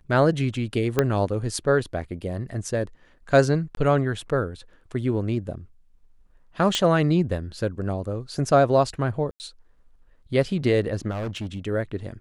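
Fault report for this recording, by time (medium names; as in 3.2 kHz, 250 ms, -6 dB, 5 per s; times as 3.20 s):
0.99 s: pop -6 dBFS
3.75–3.77 s: dropout 22 ms
6.75 s: pop -8 dBFS
9.31–9.40 s: dropout 89 ms
11.10–11.67 s: clipped -26 dBFS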